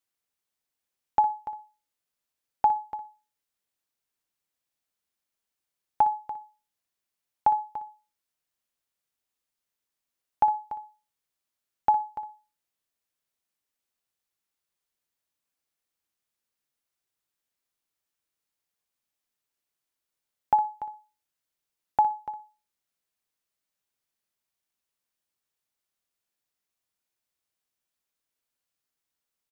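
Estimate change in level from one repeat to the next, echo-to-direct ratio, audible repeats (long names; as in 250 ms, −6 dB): −16.0 dB, −13.0 dB, 2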